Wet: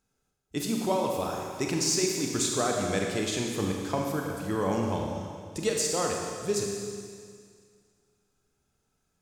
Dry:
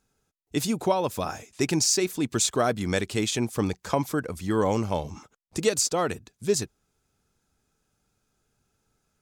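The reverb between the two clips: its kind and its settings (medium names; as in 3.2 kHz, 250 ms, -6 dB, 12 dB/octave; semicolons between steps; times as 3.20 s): Schroeder reverb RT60 2.1 s, combs from 31 ms, DRR 0 dB; trim -5.5 dB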